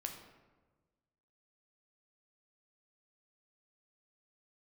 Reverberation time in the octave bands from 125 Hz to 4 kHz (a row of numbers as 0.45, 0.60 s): 1.7, 1.5, 1.4, 1.2, 1.0, 0.70 s